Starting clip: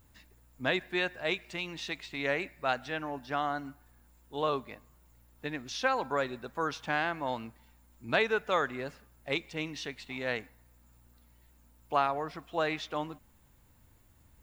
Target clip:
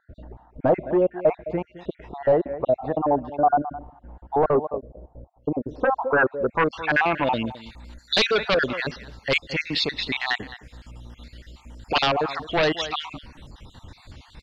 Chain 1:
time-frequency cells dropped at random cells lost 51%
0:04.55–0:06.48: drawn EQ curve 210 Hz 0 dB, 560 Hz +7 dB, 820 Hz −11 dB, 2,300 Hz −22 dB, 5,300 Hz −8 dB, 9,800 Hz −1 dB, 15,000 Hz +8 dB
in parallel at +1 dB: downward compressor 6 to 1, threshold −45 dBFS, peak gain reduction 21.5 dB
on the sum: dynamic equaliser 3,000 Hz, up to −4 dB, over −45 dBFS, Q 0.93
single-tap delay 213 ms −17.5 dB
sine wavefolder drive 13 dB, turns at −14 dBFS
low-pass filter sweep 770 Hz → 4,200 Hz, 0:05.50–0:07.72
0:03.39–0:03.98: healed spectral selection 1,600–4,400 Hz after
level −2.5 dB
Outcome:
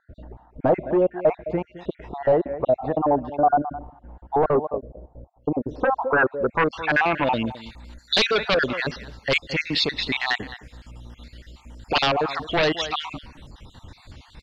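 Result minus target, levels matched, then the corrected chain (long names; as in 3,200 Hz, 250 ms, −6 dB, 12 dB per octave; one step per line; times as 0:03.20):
downward compressor: peak gain reduction −9 dB
time-frequency cells dropped at random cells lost 51%
0:04.55–0:06.48: drawn EQ curve 210 Hz 0 dB, 560 Hz +7 dB, 820 Hz −11 dB, 2,300 Hz −22 dB, 5,300 Hz −8 dB, 9,800 Hz −1 dB, 15,000 Hz +8 dB
in parallel at +1 dB: downward compressor 6 to 1, threshold −56 dBFS, peak gain reduction 30.5 dB
on the sum: dynamic equaliser 3,000 Hz, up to −4 dB, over −45 dBFS, Q 0.93
single-tap delay 213 ms −17.5 dB
sine wavefolder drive 13 dB, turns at −14 dBFS
low-pass filter sweep 770 Hz → 4,200 Hz, 0:05.50–0:07.72
0:03.39–0:03.98: healed spectral selection 1,600–4,400 Hz after
level −2.5 dB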